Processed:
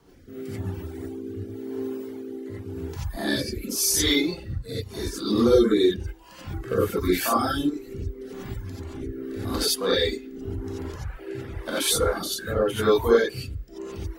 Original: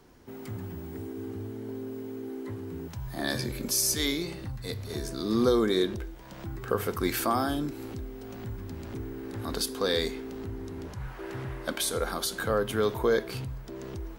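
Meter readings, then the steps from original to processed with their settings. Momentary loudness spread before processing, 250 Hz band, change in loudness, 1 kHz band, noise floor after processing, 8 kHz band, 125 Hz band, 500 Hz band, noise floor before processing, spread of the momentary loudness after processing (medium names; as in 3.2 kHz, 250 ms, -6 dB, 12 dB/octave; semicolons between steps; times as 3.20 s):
14 LU, +5.0 dB, +5.5 dB, +3.5 dB, -44 dBFS, +4.5 dB, +3.5 dB, +6.0 dB, -43 dBFS, 16 LU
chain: gated-style reverb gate 110 ms rising, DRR -7.5 dB; rotary cabinet horn 0.9 Hz; reverb removal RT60 1.1 s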